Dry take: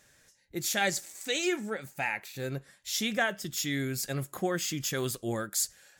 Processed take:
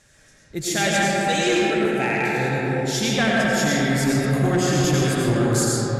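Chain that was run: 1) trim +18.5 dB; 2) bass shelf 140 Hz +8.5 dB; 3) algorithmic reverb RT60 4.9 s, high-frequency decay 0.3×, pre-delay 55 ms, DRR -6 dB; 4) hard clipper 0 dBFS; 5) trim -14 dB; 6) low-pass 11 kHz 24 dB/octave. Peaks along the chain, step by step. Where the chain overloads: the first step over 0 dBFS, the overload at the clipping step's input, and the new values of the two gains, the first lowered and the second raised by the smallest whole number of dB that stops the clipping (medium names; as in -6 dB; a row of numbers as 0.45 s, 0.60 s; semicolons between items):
+3.0 dBFS, +3.0 dBFS, +8.0 dBFS, 0.0 dBFS, -14.0 dBFS, -12.0 dBFS; step 1, 8.0 dB; step 1 +10.5 dB, step 5 -6 dB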